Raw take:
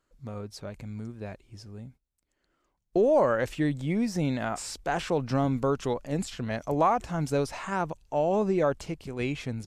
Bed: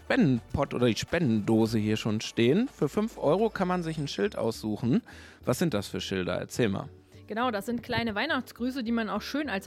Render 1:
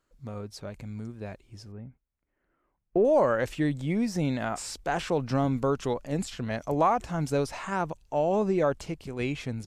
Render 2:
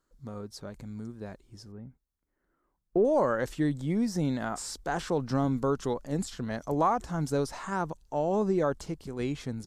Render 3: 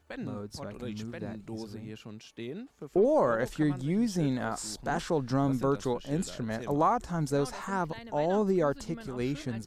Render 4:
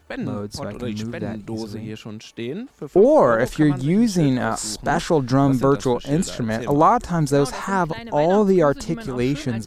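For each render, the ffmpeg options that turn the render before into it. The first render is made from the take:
-filter_complex "[0:a]asettb=1/sr,asplit=3[a][b][c];[a]atrim=end=1.724[d];[b]atrim=start=1.72:end=3.05,asetpts=PTS-STARTPTS,afade=t=in:d=0.004:c=qsin,afade=t=out:st=1.326:d=0.004:c=qsin,lowpass=f=2.3k:w=0.5412,lowpass=f=2.3k:w=1.3066[e];[c]atrim=start=3.046[f];[d][e]acrossfade=d=0.004:c1=hsin:c2=qsin[g];[g][f]acrossfade=d=0.004:c1=qsin:c2=hsin"
-af "equalizer=f=100:t=o:w=0.67:g=-5,equalizer=f=630:t=o:w=0.67:g=-4,equalizer=f=2.5k:t=o:w=0.67:g=-10"
-filter_complex "[1:a]volume=-16dB[a];[0:a][a]amix=inputs=2:normalize=0"
-af "volume=10.5dB"

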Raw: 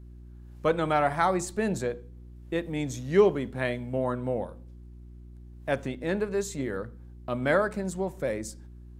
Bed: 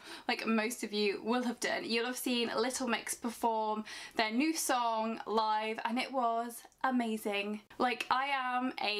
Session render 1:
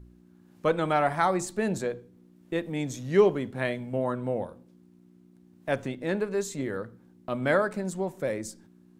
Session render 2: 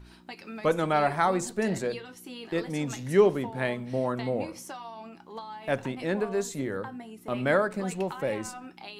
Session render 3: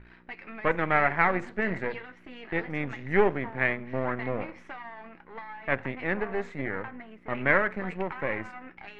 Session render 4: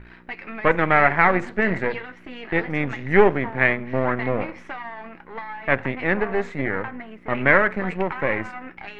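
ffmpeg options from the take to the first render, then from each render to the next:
-af "bandreject=f=60:t=h:w=4,bandreject=f=120:t=h:w=4"
-filter_complex "[1:a]volume=-9.5dB[a];[0:a][a]amix=inputs=2:normalize=0"
-af "aeval=exprs='if(lt(val(0),0),0.251*val(0),val(0))':c=same,lowpass=f=2k:t=q:w=3.7"
-af "volume=7.5dB,alimiter=limit=-2dB:level=0:latency=1"

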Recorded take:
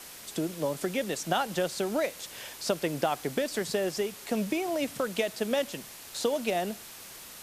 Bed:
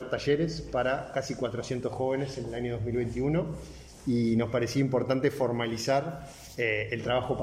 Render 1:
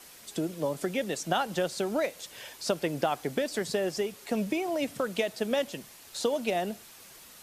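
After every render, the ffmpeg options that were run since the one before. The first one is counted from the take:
-af "afftdn=nr=6:nf=-46"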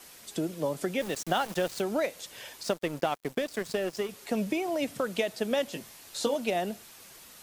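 -filter_complex "[0:a]asettb=1/sr,asplit=3[a][b][c];[a]atrim=end=1.004[d];[b]atrim=start=1:end=1.82,asetpts=PTS-STARTPTS,afade=t=in:d=0.004:c=qsin,afade=t=out:st=0.816:d=0.004:c=qsin,aeval=exprs='val(0)*gte(abs(val(0)),0.0141)':c=same[e];[c]atrim=start=1.816[f];[d][e]acrossfade=d=0.004:c1=hsin:c2=qsin[g];[g][f]acrossfade=d=0.004:c1=qsin:c2=hsin,asettb=1/sr,asplit=3[h][i][j];[h]atrim=end=2.634[k];[i]atrim=start=2.63:end=4.09,asetpts=PTS-STARTPTS,afade=t=in:d=0.004:c=qsin,afade=t=out:st=1.456:d=0.004:c=qsin,aeval=exprs='sgn(val(0))*max(abs(val(0))-0.00944,0)':c=same[l];[j]atrim=start=4.086[m];[k][l]acrossfade=d=0.004:c1=hsin:c2=qsin[n];[n][m]acrossfade=d=0.004:c1=qsin:c2=hsin,asettb=1/sr,asplit=3[o][p][q];[o]atrim=end=5.704[r];[p]atrim=start=5.7:end=6.35,asetpts=PTS-STARTPTS,afade=t=in:d=0.004:c=qsin,afade=t=out:st=0.646:d=0.004:c=qsin,asplit=2[s][t];[t]adelay=18,volume=-6dB[u];[s][u]amix=inputs=2:normalize=0,atrim=end_sample=28665[v];[q]atrim=start=6.346[w];[r][v]acrossfade=d=0.004:c1=hsin:c2=qsin[x];[x][w]acrossfade=d=0.004:c1=qsin:c2=hsin"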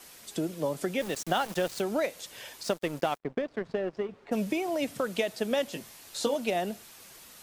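-filter_complex "[0:a]asplit=3[a][b][c];[a]afade=t=out:st=3.17:d=0.02[d];[b]adynamicsmooth=sensitivity=1:basefreq=1.6k,afade=t=in:st=3.17:d=0.02,afade=t=out:st=4.31:d=0.02[e];[c]afade=t=in:st=4.31:d=0.02[f];[d][e][f]amix=inputs=3:normalize=0"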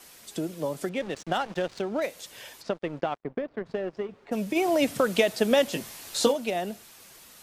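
-filter_complex "[0:a]asettb=1/sr,asplit=3[a][b][c];[a]atrim=end=0.894[d];[b]atrim=start=0.89:end=2.02,asetpts=PTS-STARTPTS,afade=t=in:d=0.004:c=qsin,afade=t=out:st=1.126:d=0.004:c=qsin,adynamicsmooth=sensitivity=5.5:basefreq=2.8k[e];[c]atrim=start=2.016[f];[d][e]acrossfade=d=0.004:c1=hsin:c2=qsin[g];[g][f]acrossfade=d=0.004:c1=qsin:c2=hsin,asplit=3[h][i][j];[h]afade=t=out:st=2.61:d=0.02[k];[i]adynamicsmooth=sensitivity=0.5:basefreq=3k,afade=t=in:st=2.61:d=0.02,afade=t=out:st=3.65:d=0.02[l];[j]afade=t=in:st=3.65:d=0.02[m];[k][l][m]amix=inputs=3:normalize=0,asplit=3[n][o][p];[n]afade=t=out:st=4.55:d=0.02[q];[o]acontrast=78,afade=t=in:st=4.55:d=0.02,afade=t=out:st=6.31:d=0.02[r];[p]afade=t=in:st=6.31:d=0.02[s];[q][r][s]amix=inputs=3:normalize=0"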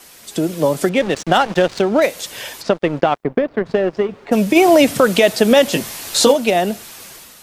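-af "dynaudnorm=f=110:g=7:m=7dB,alimiter=level_in=7.5dB:limit=-1dB:release=50:level=0:latency=1"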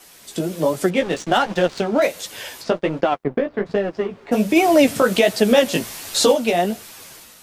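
-af "flanger=delay=9.4:depth=8.6:regen=-18:speed=1.3:shape=sinusoidal"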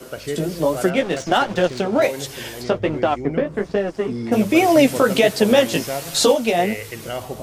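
-filter_complex "[1:a]volume=-1dB[a];[0:a][a]amix=inputs=2:normalize=0"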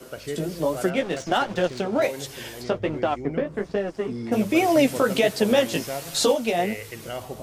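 -af "volume=-5dB"

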